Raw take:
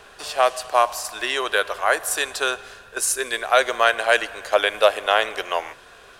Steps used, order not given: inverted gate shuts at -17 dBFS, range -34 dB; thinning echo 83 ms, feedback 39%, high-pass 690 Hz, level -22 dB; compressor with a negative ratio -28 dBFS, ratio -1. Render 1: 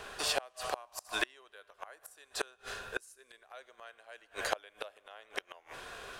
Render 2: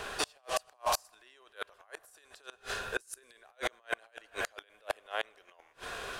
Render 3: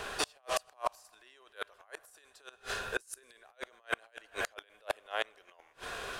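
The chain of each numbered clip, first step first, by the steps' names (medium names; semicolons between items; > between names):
thinning echo > inverted gate > compressor with a negative ratio; compressor with a negative ratio > thinning echo > inverted gate; thinning echo > compressor with a negative ratio > inverted gate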